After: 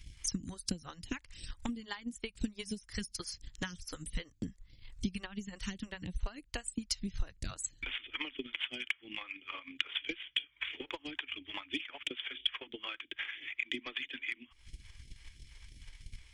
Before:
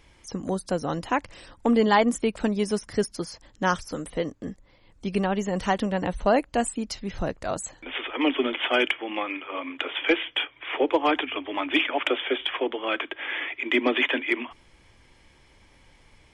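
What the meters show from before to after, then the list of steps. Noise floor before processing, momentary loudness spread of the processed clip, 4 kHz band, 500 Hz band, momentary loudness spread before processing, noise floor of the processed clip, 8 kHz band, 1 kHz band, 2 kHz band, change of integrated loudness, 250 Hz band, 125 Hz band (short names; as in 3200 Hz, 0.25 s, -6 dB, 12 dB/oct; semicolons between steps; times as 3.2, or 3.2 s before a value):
-58 dBFS, 18 LU, -7.5 dB, -24.5 dB, 10 LU, -66 dBFS, -4.0 dB, -23.5 dB, -12.5 dB, -13.5 dB, -15.5 dB, -10.5 dB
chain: phaser stages 2, 3 Hz, lowest notch 160–1200 Hz; compressor 4:1, threshold -41 dBFS, peak gain reduction 21 dB; transient shaper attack +11 dB, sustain -5 dB; passive tone stack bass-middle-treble 6-0-2; gain +16 dB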